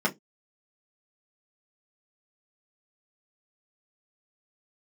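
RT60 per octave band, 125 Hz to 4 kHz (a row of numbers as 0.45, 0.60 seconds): 0.20, 0.20, 0.20, 0.10, 0.15, 0.15 seconds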